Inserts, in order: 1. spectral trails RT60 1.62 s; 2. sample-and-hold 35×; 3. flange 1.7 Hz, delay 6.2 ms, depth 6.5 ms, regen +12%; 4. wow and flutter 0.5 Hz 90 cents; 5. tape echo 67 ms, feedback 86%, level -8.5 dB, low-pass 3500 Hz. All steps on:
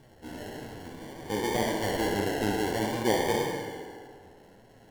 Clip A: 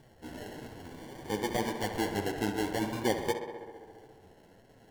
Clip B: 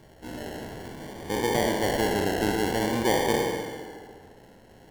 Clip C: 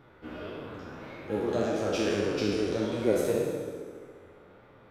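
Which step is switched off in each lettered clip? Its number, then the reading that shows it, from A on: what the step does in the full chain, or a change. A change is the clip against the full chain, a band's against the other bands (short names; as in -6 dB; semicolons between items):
1, loudness change -4.0 LU; 3, loudness change +3.0 LU; 2, 500 Hz band +6.0 dB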